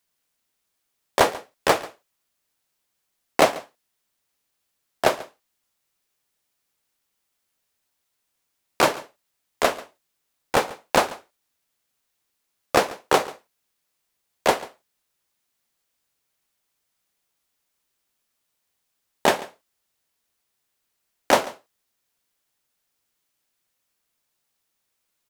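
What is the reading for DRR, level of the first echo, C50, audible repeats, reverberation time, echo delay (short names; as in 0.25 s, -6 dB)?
none, -19.0 dB, none, 1, none, 0.14 s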